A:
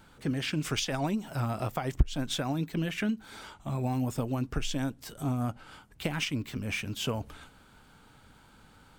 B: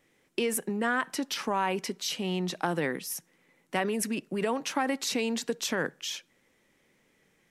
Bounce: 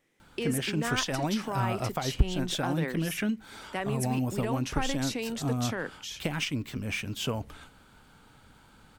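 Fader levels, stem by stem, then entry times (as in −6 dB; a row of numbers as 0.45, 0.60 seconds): +0.5, −4.5 decibels; 0.20, 0.00 seconds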